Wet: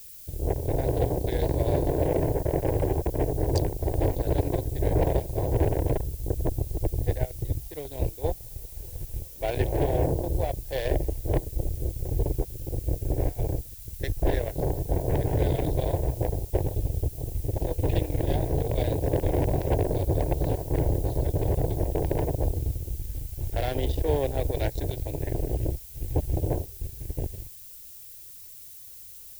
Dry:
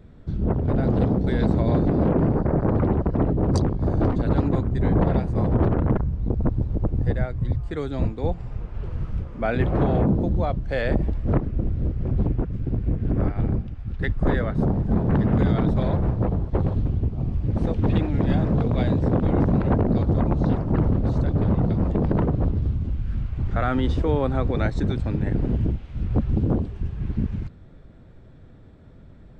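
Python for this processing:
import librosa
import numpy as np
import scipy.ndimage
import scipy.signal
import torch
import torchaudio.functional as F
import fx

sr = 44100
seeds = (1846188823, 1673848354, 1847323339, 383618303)

y = fx.cheby_harmonics(x, sr, harmonics=(7,), levels_db=(-19,), full_scale_db=-8.0)
y = fx.fixed_phaser(y, sr, hz=520.0, stages=4)
y = fx.dmg_noise_colour(y, sr, seeds[0], colour='violet', level_db=-45.0)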